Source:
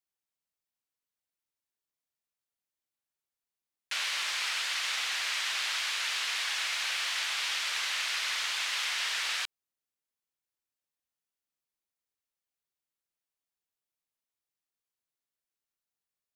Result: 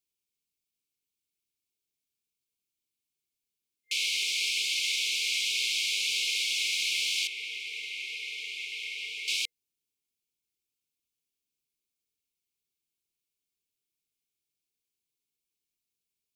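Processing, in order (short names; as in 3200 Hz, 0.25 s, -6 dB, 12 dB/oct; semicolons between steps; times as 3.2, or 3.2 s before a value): 7.27–9.28 three-band isolator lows -13 dB, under 380 Hz, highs -17 dB, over 2400 Hz; FFT band-reject 480–2100 Hz; gain +4 dB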